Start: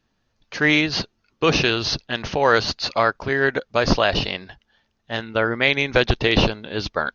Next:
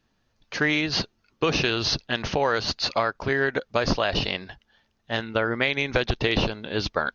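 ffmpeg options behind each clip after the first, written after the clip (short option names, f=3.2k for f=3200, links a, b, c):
-af "acompressor=threshold=-19dB:ratio=6"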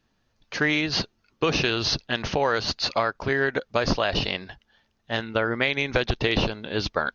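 -af anull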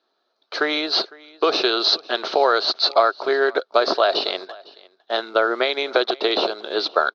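-filter_complex "[0:a]asplit=2[a][b];[b]acrusher=bits=5:mix=0:aa=0.000001,volume=-10dB[c];[a][c]amix=inputs=2:normalize=0,highpass=f=350:w=0.5412,highpass=f=350:w=1.3066,equalizer=f=380:t=q:w=4:g=7,equalizer=f=670:t=q:w=4:g=8,equalizer=f=1.3k:t=q:w=4:g=8,equalizer=f=1.9k:t=q:w=4:g=-7,equalizer=f=2.7k:t=q:w=4:g=-7,equalizer=f=4k:t=q:w=4:g=10,lowpass=f=5k:w=0.5412,lowpass=f=5k:w=1.3066,aecho=1:1:505:0.0708"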